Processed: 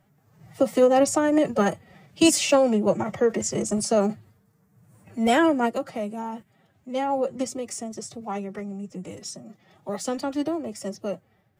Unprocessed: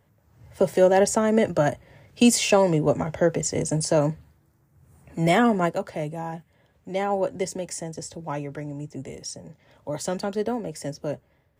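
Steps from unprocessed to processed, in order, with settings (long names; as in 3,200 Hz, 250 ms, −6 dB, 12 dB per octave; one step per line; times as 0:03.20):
phase-vocoder pitch shift with formants kept +5.5 semitones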